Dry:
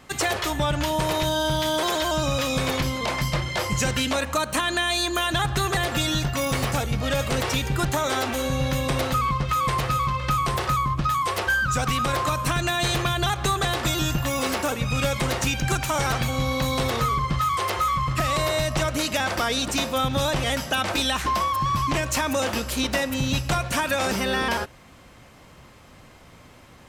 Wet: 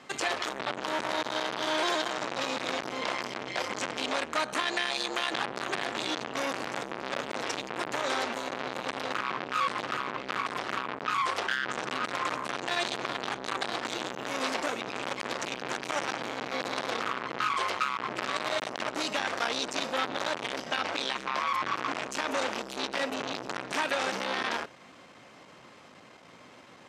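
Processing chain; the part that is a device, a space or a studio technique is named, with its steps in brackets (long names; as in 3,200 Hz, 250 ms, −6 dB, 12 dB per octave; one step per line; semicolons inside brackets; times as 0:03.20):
0:20.61–0:21.47: high-shelf EQ 8,400 Hz −10 dB
public-address speaker with an overloaded transformer (saturating transformer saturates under 1,800 Hz; band-pass filter 230–6,500 Hz)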